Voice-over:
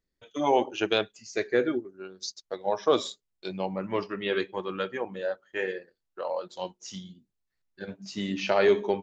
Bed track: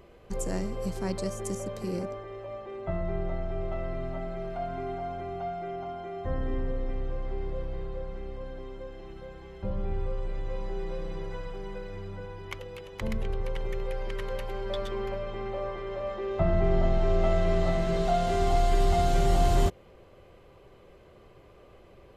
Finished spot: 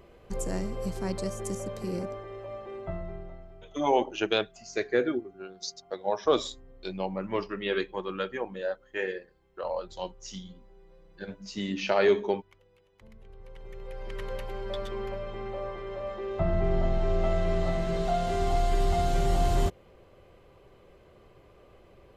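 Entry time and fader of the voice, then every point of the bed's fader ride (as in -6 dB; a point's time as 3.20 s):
3.40 s, -1.0 dB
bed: 2.77 s -0.5 dB
3.75 s -22 dB
13.16 s -22 dB
14.22 s -2 dB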